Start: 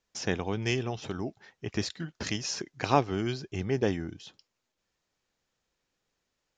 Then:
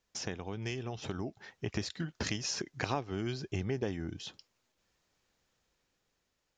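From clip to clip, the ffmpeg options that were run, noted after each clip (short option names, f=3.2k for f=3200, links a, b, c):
-af "acompressor=threshold=-37dB:ratio=4,equalizer=f=66:w=0.9:g=3,dynaudnorm=f=470:g=5:m=4dB"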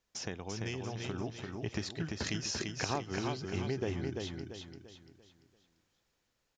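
-af "aecho=1:1:342|684|1026|1368|1710:0.631|0.246|0.096|0.0374|0.0146,volume=-1.5dB"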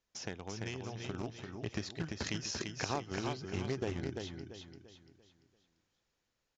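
-filter_complex "[0:a]asplit=2[a][b];[b]acrusher=bits=4:mix=0:aa=0.000001,volume=-10.5dB[c];[a][c]amix=inputs=2:normalize=0,aresample=16000,aresample=44100,volume=-3.5dB"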